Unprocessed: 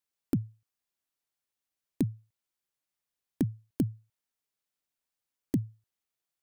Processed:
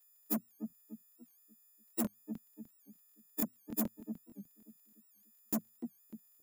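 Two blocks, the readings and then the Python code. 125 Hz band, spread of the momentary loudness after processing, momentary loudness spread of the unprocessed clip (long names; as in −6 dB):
−17.0 dB, 18 LU, 10 LU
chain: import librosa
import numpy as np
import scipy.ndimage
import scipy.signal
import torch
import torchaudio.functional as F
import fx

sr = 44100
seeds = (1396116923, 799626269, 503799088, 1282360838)

y = fx.freq_snap(x, sr, grid_st=6)
y = fx.peak_eq(y, sr, hz=250.0, db=10.0, octaves=0.37)
y = fx.echo_wet_lowpass(y, sr, ms=293, feedback_pct=37, hz=870.0, wet_db=-14.5)
y = fx.dmg_crackle(y, sr, seeds[0], per_s=23.0, level_db=-62.0)
y = y + 0.43 * np.pad(y, (int(4.7 * sr / 1000.0), 0))[:len(y)]
y = 10.0 ** (-27.5 / 20.0) * np.tanh(y / 10.0 ** (-27.5 / 20.0))
y = scipy.signal.sosfilt(scipy.signal.cheby1(5, 1.0, 180.0, 'highpass', fs=sr, output='sos'), y)
y = fx.high_shelf(y, sr, hz=11000.0, db=10.5)
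y = fx.buffer_crackle(y, sr, first_s=0.68, period_s=0.15, block=1024, kind='repeat')
y = fx.record_warp(y, sr, rpm=78.0, depth_cents=160.0)
y = y * 10.0 ** (-2.0 / 20.0)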